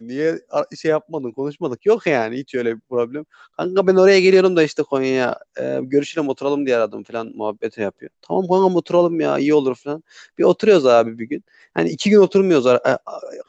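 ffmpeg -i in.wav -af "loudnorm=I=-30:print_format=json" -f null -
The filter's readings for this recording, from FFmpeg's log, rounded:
"input_i" : "-17.5",
"input_tp" : "-1.2",
"input_lra" : "4.9",
"input_thresh" : "-28.0",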